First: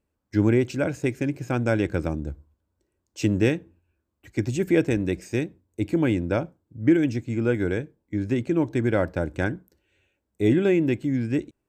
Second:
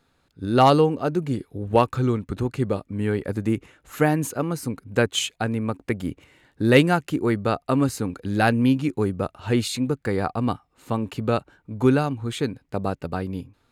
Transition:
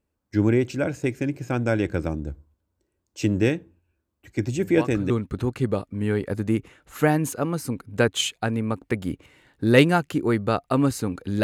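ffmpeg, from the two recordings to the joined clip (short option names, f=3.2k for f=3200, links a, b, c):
-filter_complex "[1:a]asplit=2[a][b];[0:a]apad=whole_dur=11.43,atrim=end=11.43,atrim=end=5.102[c];[b]atrim=start=2.078:end=8.41[d];[a]atrim=start=1.5:end=2.08,asetpts=PTS-STARTPTS,volume=-13dB,afade=t=in:d=0.004:c=hsin,afade=t=out:st=0.576:d=0.004:c=hsin,adelay=4520[e];[c][d]acrossfade=d=0.004:c1=hsin:c2=hsin[f];[f][e]amix=inputs=2:normalize=0"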